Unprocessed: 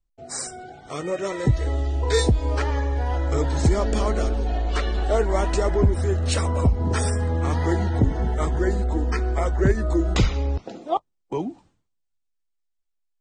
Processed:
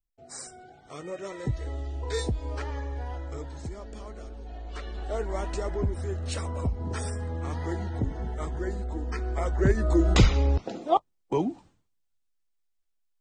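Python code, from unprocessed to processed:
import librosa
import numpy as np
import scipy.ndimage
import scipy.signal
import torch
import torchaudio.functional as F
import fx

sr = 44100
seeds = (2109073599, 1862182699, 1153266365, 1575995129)

y = fx.gain(x, sr, db=fx.line((3.03, -10.0), (3.71, -19.0), (4.22, -19.0), (5.26, -9.5), (9.01, -9.5), (10.12, 1.0)))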